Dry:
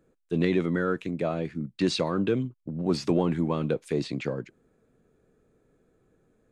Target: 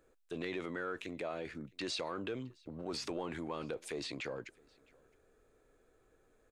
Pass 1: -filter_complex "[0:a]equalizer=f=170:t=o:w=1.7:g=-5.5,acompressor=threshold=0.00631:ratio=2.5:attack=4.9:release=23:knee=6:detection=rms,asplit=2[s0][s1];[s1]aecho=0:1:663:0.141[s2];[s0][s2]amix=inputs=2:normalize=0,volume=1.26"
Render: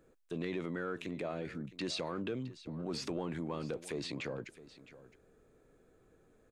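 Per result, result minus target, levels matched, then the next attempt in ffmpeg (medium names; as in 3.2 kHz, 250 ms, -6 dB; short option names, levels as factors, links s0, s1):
echo-to-direct +10.5 dB; 125 Hz band +5.0 dB
-filter_complex "[0:a]equalizer=f=170:t=o:w=1.7:g=-5.5,acompressor=threshold=0.00631:ratio=2.5:attack=4.9:release=23:knee=6:detection=rms,asplit=2[s0][s1];[s1]aecho=0:1:663:0.0422[s2];[s0][s2]amix=inputs=2:normalize=0,volume=1.26"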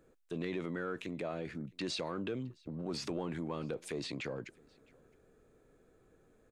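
125 Hz band +5.0 dB
-filter_complex "[0:a]equalizer=f=170:t=o:w=1.7:g=-16.5,acompressor=threshold=0.00631:ratio=2.5:attack=4.9:release=23:knee=6:detection=rms,asplit=2[s0][s1];[s1]aecho=0:1:663:0.0422[s2];[s0][s2]amix=inputs=2:normalize=0,volume=1.26"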